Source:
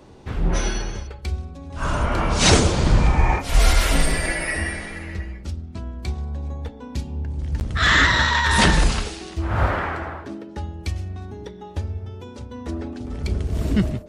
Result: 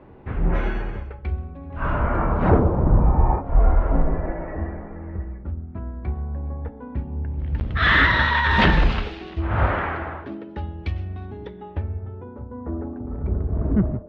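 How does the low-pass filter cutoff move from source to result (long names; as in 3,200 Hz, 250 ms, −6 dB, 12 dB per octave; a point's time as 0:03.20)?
low-pass filter 24 dB per octave
0:01.90 2,300 Hz
0:02.67 1,100 Hz
0:04.97 1,100 Hz
0:05.82 1,800 Hz
0:07.08 1,800 Hz
0:07.62 3,300 Hz
0:11.46 3,300 Hz
0:12.42 1,300 Hz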